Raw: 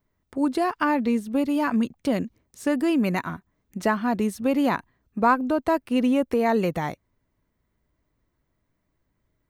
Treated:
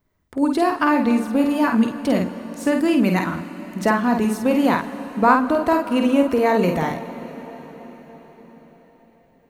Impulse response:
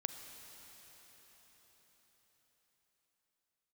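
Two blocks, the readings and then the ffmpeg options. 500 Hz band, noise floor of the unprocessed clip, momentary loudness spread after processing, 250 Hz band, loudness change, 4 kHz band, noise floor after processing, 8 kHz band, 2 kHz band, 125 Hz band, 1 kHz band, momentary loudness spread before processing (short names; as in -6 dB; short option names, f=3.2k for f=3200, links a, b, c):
+5.0 dB, -75 dBFS, 15 LU, +5.0 dB, +4.5 dB, +5.0 dB, -57 dBFS, +5.0 dB, +5.0 dB, +5.5 dB, +5.0 dB, 9 LU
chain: -filter_complex "[0:a]asplit=2[a][b];[1:a]atrim=start_sample=2205,adelay=50[c];[b][c]afir=irnorm=-1:irlink=0,volume=-3dB[d];[a][d]amix=inputs=2:normalize=0,volume=3.5dB"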